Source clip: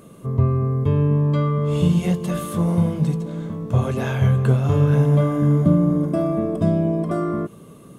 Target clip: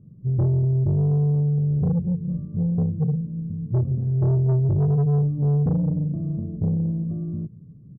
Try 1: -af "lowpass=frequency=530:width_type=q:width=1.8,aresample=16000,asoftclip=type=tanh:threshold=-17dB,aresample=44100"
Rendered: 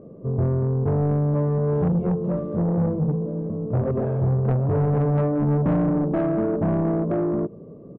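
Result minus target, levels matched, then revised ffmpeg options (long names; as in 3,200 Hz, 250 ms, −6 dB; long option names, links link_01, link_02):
500 Hz band +9.0 dB
-af "lowpass=frequency=130:width_type=q:width=1.8,aresample=16000,asoftclip=type=tanh:threshold=-17dB,aresample=44100"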